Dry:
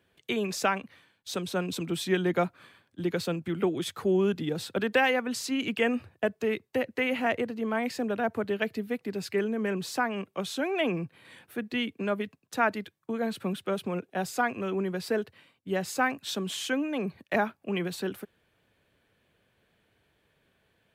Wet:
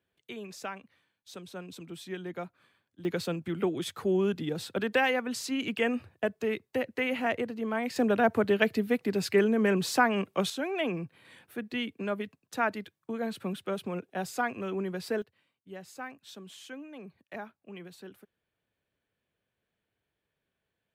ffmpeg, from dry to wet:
-af "asetnsamples=n=441:p=0,asendcmd='3.05 volume volume -2dB;7.96 volume volume 4.5dB;10.5 volume volume -3dB;15.22 volume volume -14.5dB',volume=-12dB"

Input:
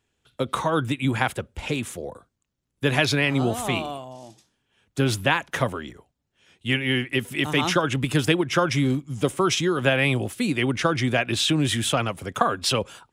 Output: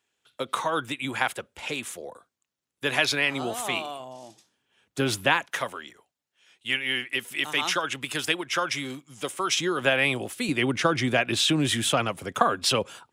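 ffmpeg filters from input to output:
-af "asetnsamples=n=441:p=0,asendcmd='4 highpass f 300;5.46 highpass f 1200;9.59 highpass f 450;10.49 highpass f 180',highpass=f=730:p=1"

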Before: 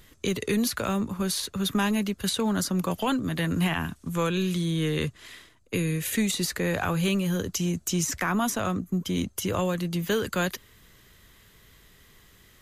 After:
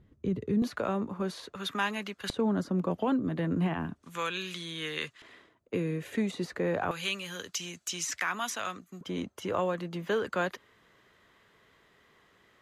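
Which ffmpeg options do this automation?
-af "asetnsamples=n=441:p=0,asendcmd='0.62 bandpass f 580;1.55 bandpass f 1500;2.3 bandpass f 380;4.03 bandpass f 2200;5.22 bandpass f 530;6.91 bandpass f 2700;9.01 bandpass f 800',bandpass=f=140:t=q:w=0.65:csg=0"

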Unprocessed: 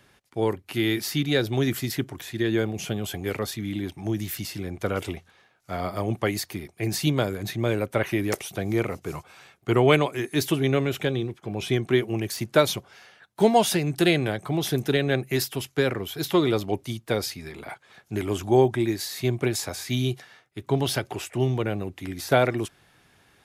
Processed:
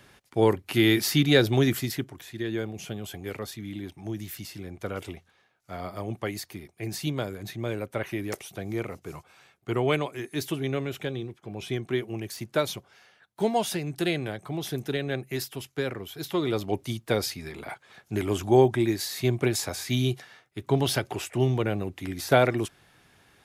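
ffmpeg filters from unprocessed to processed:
-af "volume=10dB,afade=t=out:st=1.44:d=0.69:silence=0.316228,afade=t=in:st=16.37:d=0.49:silence=0.473151"

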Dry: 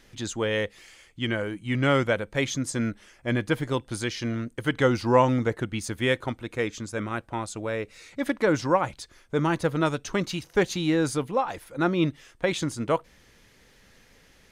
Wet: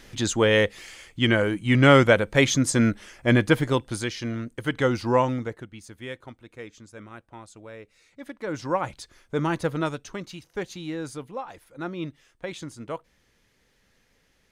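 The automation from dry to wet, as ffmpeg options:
-af "volume=18.5dB,afade=t=out:st=3.34:d=0.8:silence=0.398107,afade=t=out:st=5.12:d=0.57:silence=0.266073,afade=t=in:st=8.39:d=0.51:silence=0.266073,afade=t=out:st=9.7:d=0.49:silence=0.398107"

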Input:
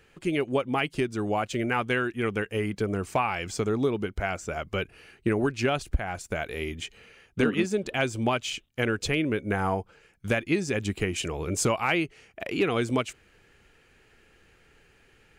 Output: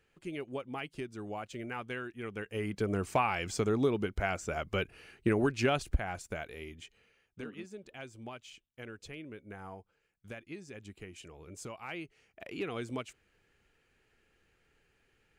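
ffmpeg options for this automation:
-af "volume=4.5dB,afade=t=in:st=2.32:d=0.64:silence=0.316228,afade=t=out:st=5.88:d=0.68:silence=0.354813,afade=t=out:st=6.56:d=0.86:silence=0.421697,afade=t=in:st=11.71:d=0.69:silence=0.421697"

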